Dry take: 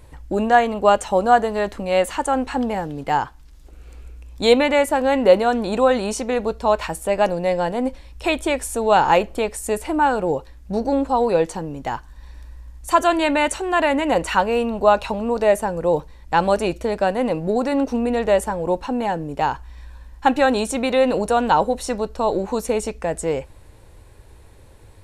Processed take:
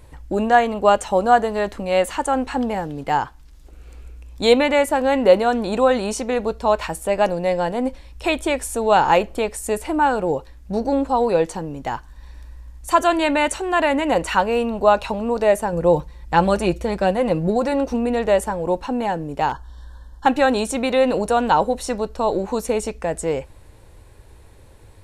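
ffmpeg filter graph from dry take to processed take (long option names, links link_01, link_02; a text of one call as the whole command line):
ffmpeg -i in.wav -filter_complex "[0:a]asettb=1/sr,asplit=3[link_01][link_02][link_03];[link_01]atrim=end=15.724[link_04];[link_02]atrim=start=15.72:end=17.94,asetpts=PTS-STARTPTS,afade=type=in:duration=0.004:curve=qsin,afade=type=out:start_time=2.216:duration=0.004:curve=qsin,highpass=42,lowshelf=frequency=88:gain=11.5,aecho=1:1:5.7:0.44,atrim=end_sample=97902[link_05];[link_03]atrim=start=17.936[link_06];[link_04][link_05]acrossfade=duration=0.004:curve1=hsin:curve2=qsin[link_07];[link_07][link_06]acrossfade=duration=0.004:curve1=qsin:curve2=hsin,asettb=1/sr,asplit=3[link_08][link_09][link_10];[link_08]atrim=end=19.494[link_11];[link_09]atrim=start=19.49:end=20.26,asetpts=PTS-STARTPTS,afade=type=in:duration=0.004:curve=qsin,afade=type=out:start_time=0.766:duration=0.004:curve=qsin,asuperstop=centerf=2300:order=12:qfactor=1.9,highshelf=frequency=11000:gain=-4.5,volume=18dB,asoftclip=hard,volume=-18dB[link_12];[link_10]atrim=start=20.256[link_13];[link_11][link_12]acrossfade=duration=0.004:curve1=hsin:curve2=qsin[link_14];[link_14][link_13]acrossfade=duration=0.004:curve1=qsin:curve2=hsin" out.wav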